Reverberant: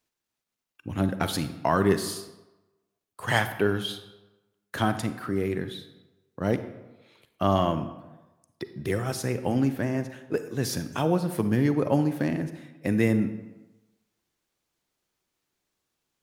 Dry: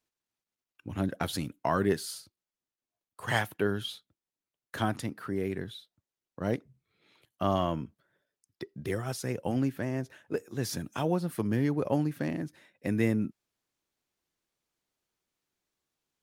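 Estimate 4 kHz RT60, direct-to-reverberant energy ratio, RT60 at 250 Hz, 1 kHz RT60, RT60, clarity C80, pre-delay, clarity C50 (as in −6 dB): 0.70 s, 10.0 dB, 0.95 s, 1.1 s, 1.1 s, 13.0 dB, 34 ms, 11.0 dB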